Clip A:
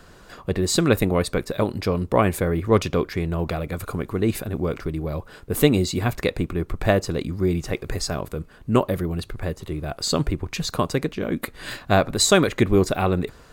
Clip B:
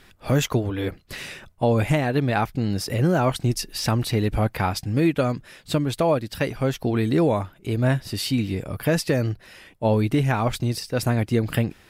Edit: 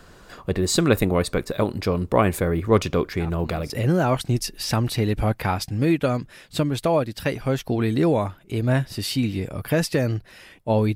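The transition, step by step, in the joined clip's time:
clip A
3.19 s: add clip B from 2.34 s 0.51 s -16 dB
3.70 s: go over to clip B from 2.85 s

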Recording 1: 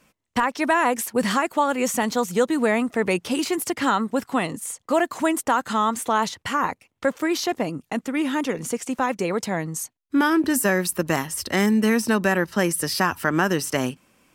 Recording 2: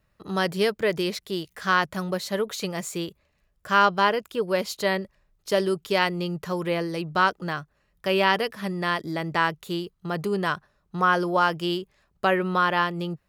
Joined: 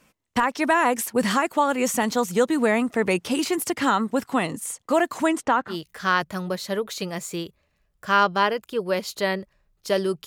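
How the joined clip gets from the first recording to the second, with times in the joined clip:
recording 1
5.24–5.76 s: low-pass 12 kHz -> 1.4 kHz
5.71 s: go over to recording 2 from 1.33 s, crossfade 0.10 s

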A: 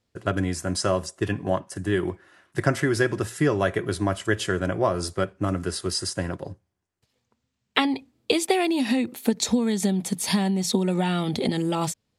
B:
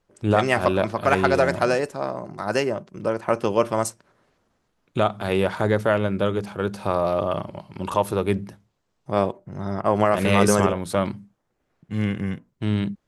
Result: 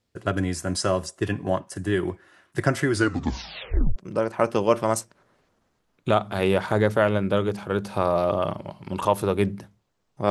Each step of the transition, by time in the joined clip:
A
2.91 s: tape stop 1.05 s
3.96 s: go over to B from 2.85 s

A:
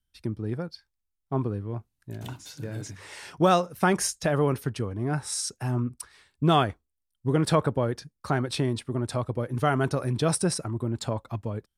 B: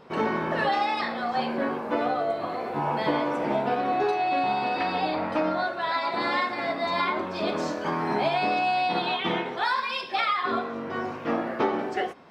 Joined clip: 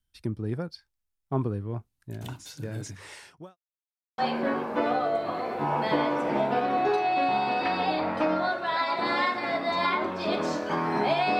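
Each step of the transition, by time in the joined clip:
A
3.09–3.57 s: fade out quadratic
3.57–4.18 s: mute
4.18 s: go over to B from 1.33 s

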